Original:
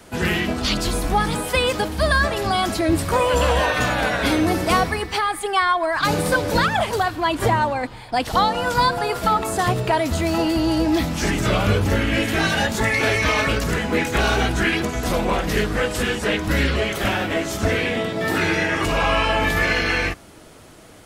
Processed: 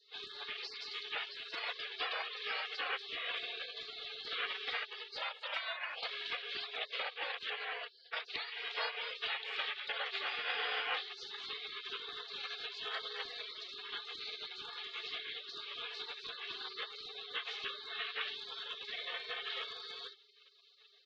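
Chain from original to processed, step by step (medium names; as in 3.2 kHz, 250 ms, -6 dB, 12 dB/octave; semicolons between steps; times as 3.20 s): mistuned SSB +310 Hz 270–2800 Hz; comb 2.1 ms, depth 45%; compression 10:1, threshold -23 dBFS, peak gain reduction 12 dB; spectral gate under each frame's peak -30 dB weak; trim +11 dB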